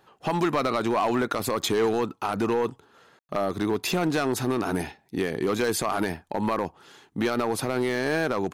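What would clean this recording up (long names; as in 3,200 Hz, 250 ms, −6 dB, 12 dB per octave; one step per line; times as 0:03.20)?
clipped peaks rebuilt −18 dBFS
ambience match 0:03.19–0:03.29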